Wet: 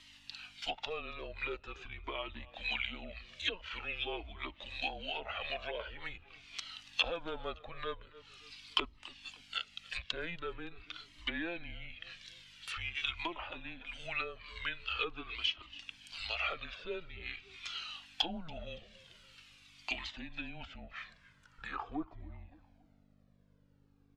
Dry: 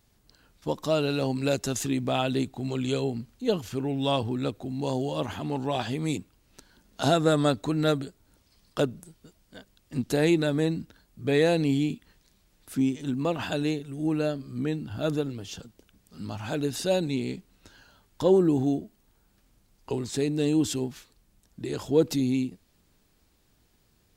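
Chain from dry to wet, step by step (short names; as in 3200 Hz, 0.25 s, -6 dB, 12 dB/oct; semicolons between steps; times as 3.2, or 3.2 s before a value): passive tone stack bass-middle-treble 10-0-10; treble ducked by the level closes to 690 Hz, closed at -38 dBFS; buzz 50 Hz, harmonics 9, -72 dBFS -1 dB/oct; low-pass sweep 3000 Hz -> 600 Hz, 20.37–23.08; feedback echo 0.283 s, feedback 41%, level -22 dB; in parallel at -0.5 dB: compressor, threshold -53 dBFS, peak gain reduction 17 dB; on the sum: tilt +4 dB/oct; frequency shift -170 Hz; cascading flanger falling 0.45 Hz; gain +8.5 dB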